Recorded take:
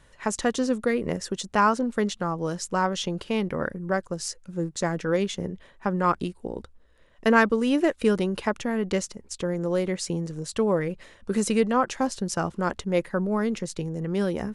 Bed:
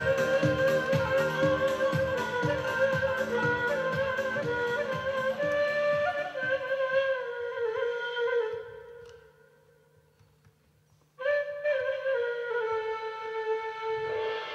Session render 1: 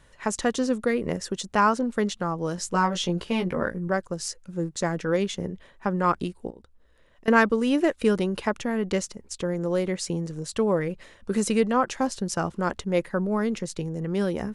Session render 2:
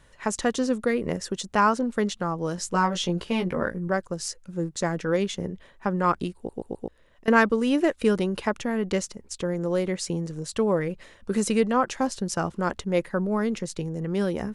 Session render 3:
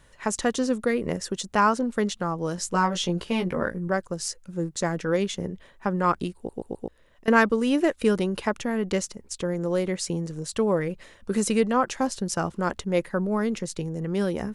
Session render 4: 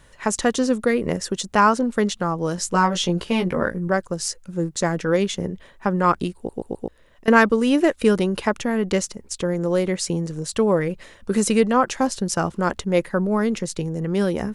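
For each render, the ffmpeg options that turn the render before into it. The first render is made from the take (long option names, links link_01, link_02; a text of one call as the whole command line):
ffmpeg -i in.wav -filter_complex "[0:a]asettb=1/sr,asplit=3[link_01][link_02][link_03];[link_01]atrim=end=2.564[link_04];[link_02]atrim=start=2.56:end=3.88,asetpts=PTS-STARTPTS,afade=type=in:duration=0.004:curve=qsin,afade=type=out:start_time=1.316:duration=0.004:curve=qsin,asplit=2[link_05][link_06];[link_06]adelay=17,volume=-4dB[link_07];[link_05][link_07]amix=inputs=2:normalize=0,atrim=end_sample=58212[link_08];[link_03]atrim=start=3.876[link_09];[link_04][link_08]acrossfade=duration=0.004:curve1=hsin:curve2=qsin[link_10];[link_10][link_09]acrossfade=duration=0.004:curve1=qsin:curve2=hsin,asettb=1/sr,asplit=3[link_11][link_12][link_13];[link_11]atrim=end=6.504[link_14];[link_12]atrim=start=6.5:end=7.28,asetpts=PTS-STARTPTS,afade=type=in:duration=0.004:curve=qsin,afade=type=out:start_time=0.776:duration=0.004:curve=qsin,acompressor=threshold=-54dB:ratio=2:attack=3.2:release=140:knee=1:detection=peak[link_15];[link_13]atrim=start=7.276[link_16];[link_14][link_15]acrossfade=duration=0.004:curve1=hsin:curve2=qsin[link_17];[link_17][link_16]acrossfade=duration=0.004:curve1=qsin:curve2=hsin" out.wav
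ffmpeg -i in.wav -filter_complex "[0:a]asplit=5[link_01][link_02][link_03][link_04][link_05];[link_01]atrim=end=6.492[link_06];[link_02]atrim=start=6.358:end=6.492[link_07];[link_03]atrim=start=6.358:end=6.492[link_08];[link_04]atrim=start=6.358:end=6.492[link_09];[link_05]atrim=start=6.878[link_10];[link_06][link_07]acrossfade=duration=0.004:curve1=hsin:curve2=hsin[link_11];[link_11][link_08]acrossfade=duration=0.004:curve1=hsin:curve2=hsin[link_12];[link_12][link_09]acrossfade=duration=0.004:curve1=hsin:curve2=hsin[link_13];[link_13][link_10]acrossfade=duration=0.004:curve1=hsin:curve2=hsin" out.wav
ffmpeg -i in.wav -af "highshelf=frequency=9300:gain=4.5" out.wav
ffmpeg -i in.wav -af "volume=4.5dB,alimiter=limit=-2dB:level=0:latency=1" out.wav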